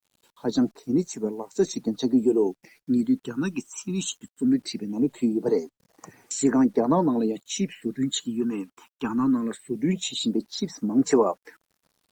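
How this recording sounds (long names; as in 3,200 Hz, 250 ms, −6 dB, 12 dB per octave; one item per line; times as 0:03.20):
phaser sweep stages 8, 0.2 Hz, lowest notch 570–3,500 Hz
a quantiser's noise floor 10 bits, dither none
Opus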